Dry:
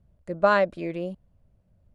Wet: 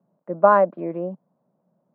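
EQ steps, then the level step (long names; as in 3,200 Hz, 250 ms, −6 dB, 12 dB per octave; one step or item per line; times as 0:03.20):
Butterworth high-pass 160 Hz 48 dB per octave
low-pass with resonance 990 Hz, resonance Q 2.1
high-frequency loss of the air 74 metres
+2.0 dB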